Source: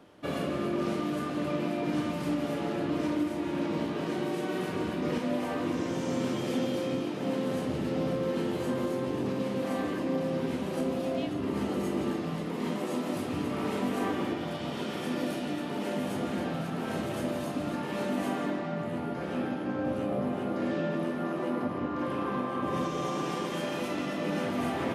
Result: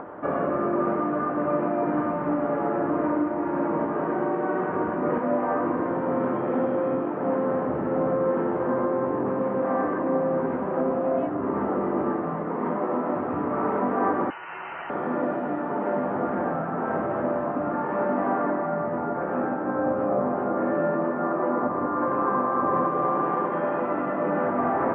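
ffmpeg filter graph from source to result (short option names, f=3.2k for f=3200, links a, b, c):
-filter_complex "[0:a]asettb=1/sr,asplit=3[a][b][c];[a]atrim=end=14.304[d];[b]atrim=start=14.3:end=14.9,asetpts=PTS-STARTPTS,afade=t=in:d=0.004:c=qsin,afade=t=out:st=0.596:d=0.004:c=qsin,highpass=410,lowpass=f=2.8k:t=q:w=0.5098,lowpass=f=2.8k:t=q:w=0.6013,lowpass=f=2.8k:t=q:w=0.9,lowpass=f=2.8k:t=q:w=2.563,afreqshift=-3300[e];[c]atrim=start=14.896[f];[d][e]acrossfade=d=0.004:c1=hsin:c2=qsin[g];[g][f]acrossfade=d=0.004:c1=qsin:c2=hsin,lowpass=f=1.5k:w=0.5412,lowpass=f=1.5k:w=1.3066,equalizer=f=1.1k:w=0.3:g=14.5,acompressor=mode=upward:threshold=-26dB:ratio=2.5,volume=-3dB"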